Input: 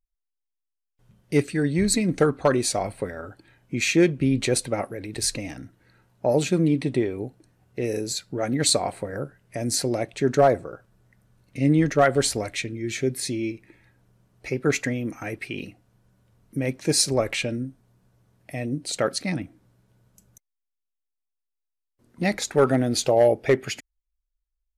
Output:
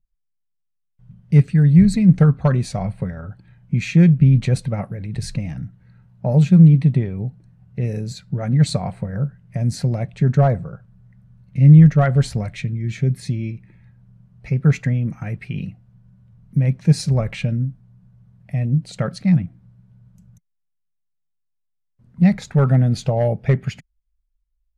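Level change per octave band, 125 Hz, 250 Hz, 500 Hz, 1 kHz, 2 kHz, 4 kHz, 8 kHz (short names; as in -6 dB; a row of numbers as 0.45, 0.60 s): +15.0 dB, +7.0 dB, -4.0 dB, -2.5 dB, -3.5 dB, -7.5 dB, under -10 dB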